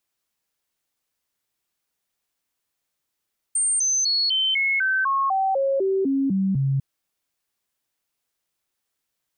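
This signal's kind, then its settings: stepped sine 8720 Hz down, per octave 2, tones 13, 0.25 s, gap 0.00 s -18.5 dBFS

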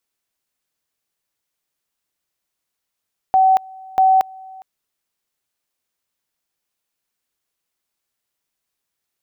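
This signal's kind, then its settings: two-level tone 760 Hz -9.5 dBFS, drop 25 dB, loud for 0.23 s, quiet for 0.41 s, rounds 2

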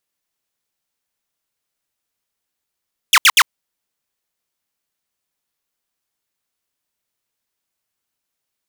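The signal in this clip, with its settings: burst of laser zaps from 3700 Hz, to 900 Hz, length 0.05 s saw, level -4 dB, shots 3, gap 0.07 s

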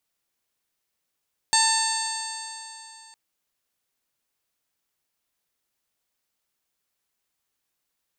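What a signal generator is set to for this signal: stretched partials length 1.61 s, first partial 889 Hz, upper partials -4/-10/-8/1/-15/-5/-4.5/0 dB, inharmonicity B 0.0012, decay 3.05 s, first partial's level -22 dB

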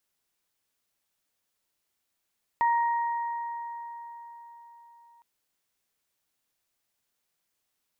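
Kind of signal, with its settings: additive tone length 2.61 s, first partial 938 Hz, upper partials -11 dB, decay 4.43 s, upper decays 3.27 s, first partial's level -20 dB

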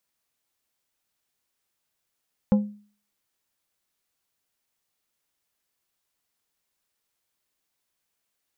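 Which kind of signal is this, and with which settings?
glass hit plate, lowest mode 207 Hz, decay 0.43 s, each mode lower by 9 dB, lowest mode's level -12.5 dB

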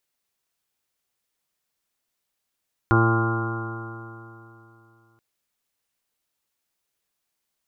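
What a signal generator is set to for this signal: stretched partials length 2.28 s, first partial 113 Hz, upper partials -10/-2/-14/-18/-19/-10/-18.5/-8/-11/-14/-4.5 dB, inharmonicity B 0.00055, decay 2.97 s, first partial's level -17 dB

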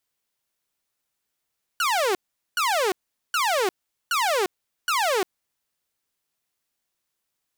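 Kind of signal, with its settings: burst of laser zaps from 1500 Hz, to 350 Hz, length 0.35 s saw, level -17.5 dB, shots 5, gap 0.42 s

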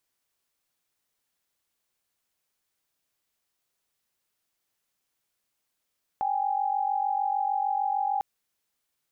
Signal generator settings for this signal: chord G5/G#5 sine, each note -27 dBFS 2.00 s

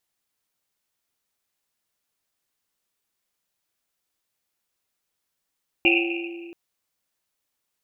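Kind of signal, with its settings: Risset drum length 0.68 s, pitch 340 Hz, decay 2.25 s, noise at 2600 Hz, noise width 420 Hz, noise 50%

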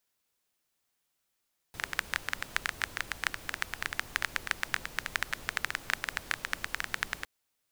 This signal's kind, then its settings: rain from filtered ticks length 5.51 s, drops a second 12, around 1700 Hz, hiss -11 dB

